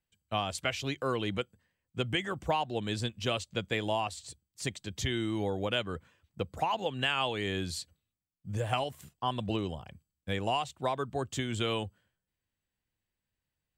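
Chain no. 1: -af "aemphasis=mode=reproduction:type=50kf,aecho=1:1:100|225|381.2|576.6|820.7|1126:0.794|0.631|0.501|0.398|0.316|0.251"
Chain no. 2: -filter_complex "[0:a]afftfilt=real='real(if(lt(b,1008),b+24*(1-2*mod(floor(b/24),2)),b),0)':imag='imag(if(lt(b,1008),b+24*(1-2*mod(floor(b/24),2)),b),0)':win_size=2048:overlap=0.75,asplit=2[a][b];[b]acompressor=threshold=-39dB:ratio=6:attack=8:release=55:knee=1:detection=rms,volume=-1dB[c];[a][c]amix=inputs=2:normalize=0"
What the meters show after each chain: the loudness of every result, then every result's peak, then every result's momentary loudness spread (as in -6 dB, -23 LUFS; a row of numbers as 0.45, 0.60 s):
-31.0, -31.5 LUFS; -14.0, -13.5 dBFS; 8, 10 LU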